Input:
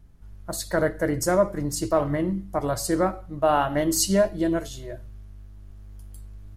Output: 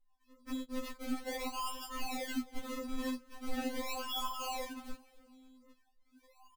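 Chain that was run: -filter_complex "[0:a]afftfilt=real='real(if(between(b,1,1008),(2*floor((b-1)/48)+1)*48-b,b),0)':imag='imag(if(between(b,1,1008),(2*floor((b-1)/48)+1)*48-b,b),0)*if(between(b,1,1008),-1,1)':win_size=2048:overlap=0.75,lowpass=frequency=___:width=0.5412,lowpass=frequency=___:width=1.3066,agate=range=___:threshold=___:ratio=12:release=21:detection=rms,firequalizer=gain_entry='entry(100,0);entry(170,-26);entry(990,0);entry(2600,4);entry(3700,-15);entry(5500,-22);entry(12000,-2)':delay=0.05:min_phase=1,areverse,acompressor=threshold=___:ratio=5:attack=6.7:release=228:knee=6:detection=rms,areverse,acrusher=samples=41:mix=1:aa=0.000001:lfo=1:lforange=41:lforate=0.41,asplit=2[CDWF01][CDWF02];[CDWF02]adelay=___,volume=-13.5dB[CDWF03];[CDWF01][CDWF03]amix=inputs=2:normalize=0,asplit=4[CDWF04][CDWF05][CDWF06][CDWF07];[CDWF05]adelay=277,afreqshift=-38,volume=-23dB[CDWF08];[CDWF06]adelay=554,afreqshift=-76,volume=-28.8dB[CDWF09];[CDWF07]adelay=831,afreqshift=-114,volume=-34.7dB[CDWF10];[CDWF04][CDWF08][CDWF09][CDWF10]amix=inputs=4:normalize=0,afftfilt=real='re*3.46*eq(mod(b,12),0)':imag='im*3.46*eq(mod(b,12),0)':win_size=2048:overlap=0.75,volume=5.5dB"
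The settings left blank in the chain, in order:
8.7k, 8.7k, -27dB, -37dB, -37dB, 17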